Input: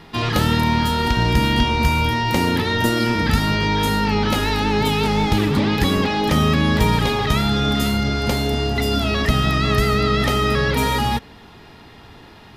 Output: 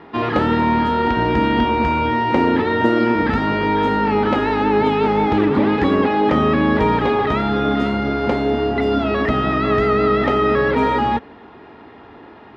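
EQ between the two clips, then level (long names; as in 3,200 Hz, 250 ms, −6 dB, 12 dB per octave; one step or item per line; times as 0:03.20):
high-pass filter 60 Hz
low-pass filter 1,700 Hz 12 dB per octave
low shelf with overshoot 210 Hz −8 dB, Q 1.5
+4.0 dB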